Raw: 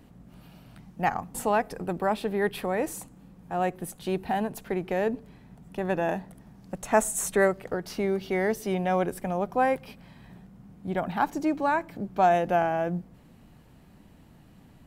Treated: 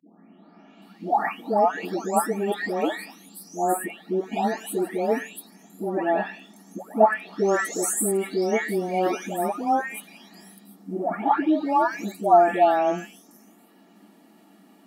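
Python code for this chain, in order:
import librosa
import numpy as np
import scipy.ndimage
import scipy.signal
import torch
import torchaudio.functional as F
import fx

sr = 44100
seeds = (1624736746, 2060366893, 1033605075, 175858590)

y = fx.spec_delay(x, sr, highs='late', ms=817)
y = scipy.signal.sosfilt(scipy.signal.ellip(4, 1.0, 40, 210.0, 'highpass', fs=sr, output='sos'), y)
y = fx.notch_comb(y, sr, f0_hz=510.0)
y = y * 10.0 ** (7.5 / 20.0)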